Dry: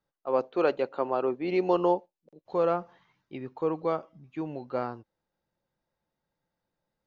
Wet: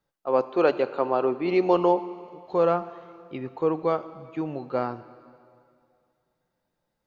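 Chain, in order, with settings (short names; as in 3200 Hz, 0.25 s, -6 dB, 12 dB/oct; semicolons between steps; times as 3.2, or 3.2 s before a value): plate-style reverb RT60 2.3 s, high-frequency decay 0.95×, DRR 13.5 dB; gain +4 dB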